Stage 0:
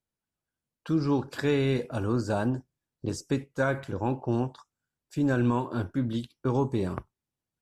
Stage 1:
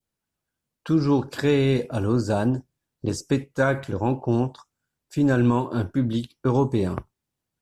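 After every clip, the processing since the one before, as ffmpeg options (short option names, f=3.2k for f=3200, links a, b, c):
-af "adynamicequalizer=threshold=0.00501:dfrequency=1400:dqfactor=1:tfrequency=1400:tqfactor=1:attack=5:release=100:ratio=0.375:range=2:mode=cutabove:tftype=bell,volume=5.5dB"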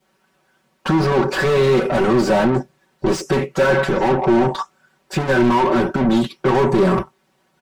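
-filter_complex "[0:a]asplit=2[a][b];[b]highpass=f=720:p=1,volume=36dB,asoftclip=type=tanh:threshold=-9dB[c];[a][c]amix=inputs=2:normalize=0,lowpass=f=1.1k:p=1,volume=-6dB,aecho=1:1:5.3:0.97,volume=-1.5dB"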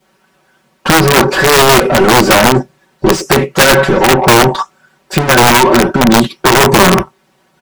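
-af "aeval=exprs='(mod(2.99*val(0)+1,2)-1)/2.99':c=same,volume=8.5dB"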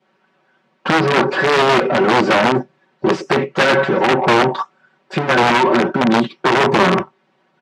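-af "highpass=160,lowpass=3.3k,volume=-5.5dB"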